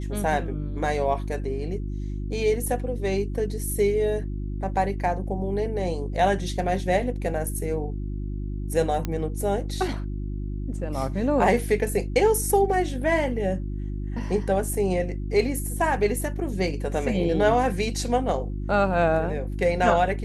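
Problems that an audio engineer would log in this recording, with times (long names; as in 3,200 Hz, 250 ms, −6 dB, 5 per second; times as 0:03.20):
mains hum 50 Hz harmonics 7 −30 dBFS
0:09.05: click −14 dBFS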